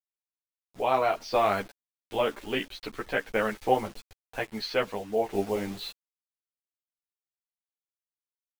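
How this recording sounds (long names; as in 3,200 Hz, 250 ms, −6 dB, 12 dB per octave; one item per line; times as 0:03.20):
a quantiser's noise floor 8 bits, dither none
sample-and-hold tremolo 1.5 Hz
a shimmering, thickened sound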